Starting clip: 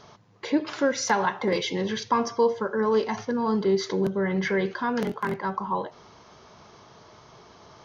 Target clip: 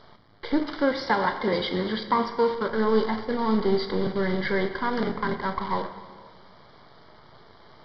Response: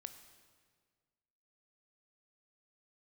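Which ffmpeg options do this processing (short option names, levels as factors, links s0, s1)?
-filter_complex "[0:a]aeval=exprs='if(lt(val(0),0),0.447*val(0),val(0))':c=same,asettb=1/sr,asplit=3[s0][s1][s2];[s0]atrim=end=0.644[s3];[s1]atrim=start=0.64:end=2.7,asetpts=PTS-STARTPTS,afade=t=in:d=0.004:c=qsin,afade=t=out:st=2.056:d=0.004:c=qsin,highpass=97[s4];[s2]atrim=start=2.696[s5];[s3][s4]acrossfade=d=0.004:c1=hsin:c2=qsin[s6];[s6][s5]acrossfade=d=0.004:c1=qsin:c2=hsin,acrusher=bits=7:dc=4:mix=0:aa=0.000001[s7];[1:a]atrim=start_sample=2205[s8];[s7][s8]afir=irnorm=-1:irlink=0,aresample=11025,aresample=44100,asuperstop=centerf=2600:order=4:qfactor=3.8,volume=2.51"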